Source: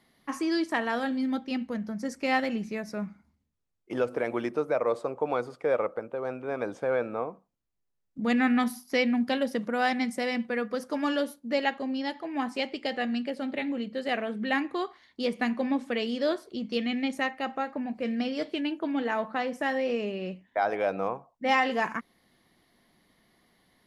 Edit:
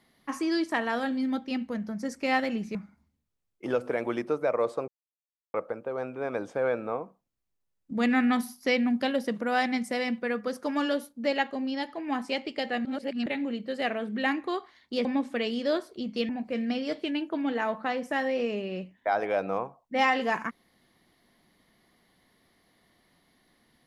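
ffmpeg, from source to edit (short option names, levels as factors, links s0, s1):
-filter_complex "[0:a]asplit=8[s0][s1][s2][s3][s4][s5][s6][s7];[s0]atrim=end=2.752[s8];[s1]atrim=start=3.018:end=5.15,asetpts=PTS-STARTPTS,afade=t=out:st=2.128:d=0.004:c=hsin[s9];[s2]atrim=start=5.15:end=5.81,asetpts=PTS-STARTPTS,volume=0[s10];[s3]atrim=start=5.81:end=13.122,asetpts=PTS-STARTPTS,afade=t=in:d=0.004:c=hsin[s11];[s4]atrim=start=13.118:end=13.532,asetpts=PTS-STARTPTS,areverse[s12];[s5]atrim=start=13.528:end=15.322[s13];[s6]atrim=start=15.608:end=16.852[s14];[s7]atrim=start=17.788[s15];[s9][s10][s11]concat=n=3:v=0:a=1[s16];[s8][s16]acrossfade=d=0.004:c1=hsin:c2=hsin[s17];[s17][s12]acrossfade=d=0.004:c1=hsin:c2=hsin[s18];[s18][s13]acrossfade=d=0.004:c1=hsin:c2=hsin[s19];[s19][s14]acrossfade=d=0.004:c1=hsin:c2=hsin[s20];[s20][s15]acrossfade=d=0.004:c1=hsin:c2=hsin"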